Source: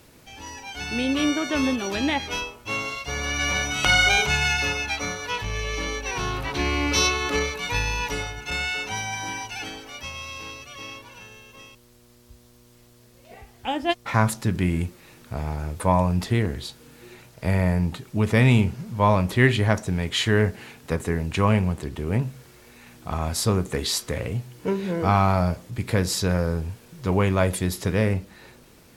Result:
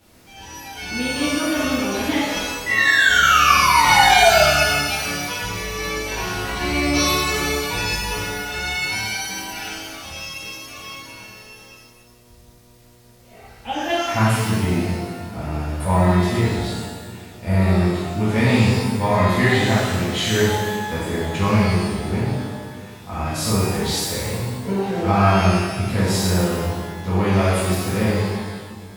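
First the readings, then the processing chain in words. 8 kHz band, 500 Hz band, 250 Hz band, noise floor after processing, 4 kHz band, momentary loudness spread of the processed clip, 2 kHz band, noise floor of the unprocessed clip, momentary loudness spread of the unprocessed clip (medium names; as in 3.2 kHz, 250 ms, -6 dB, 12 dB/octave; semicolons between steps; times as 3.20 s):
+5.0 dB, +4.5 dB, +4.0 dB, -49 dBFS, +5.0 dB, 18 LU, +6.0 dB, -53 dBFS, 14 LU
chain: painted sound fall, 2.66–4.42 s, 600–2000 Hz -18 dBFS; two-band feedback delay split 420 Hz, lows 345 ms, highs 124 ms, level -14 dB; pitch-shifted reverb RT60 1.2 s, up +12 st, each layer -8 dB, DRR -10 dB; trim -8 dB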